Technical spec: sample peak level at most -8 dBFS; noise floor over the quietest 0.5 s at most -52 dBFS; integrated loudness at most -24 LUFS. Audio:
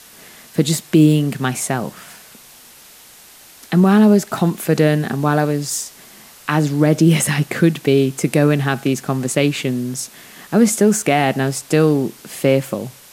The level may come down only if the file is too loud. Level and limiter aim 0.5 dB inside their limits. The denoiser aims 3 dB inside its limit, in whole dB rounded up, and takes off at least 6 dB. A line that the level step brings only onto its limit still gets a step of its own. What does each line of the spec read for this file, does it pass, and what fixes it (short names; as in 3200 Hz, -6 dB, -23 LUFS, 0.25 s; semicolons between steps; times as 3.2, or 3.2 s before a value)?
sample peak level -2.5 dBFS: fail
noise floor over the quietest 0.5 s -44 dBFS: fail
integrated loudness -17.0 LUFS: fail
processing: denoiser 6 dB, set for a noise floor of -44 dBFS; gain -7.5 dB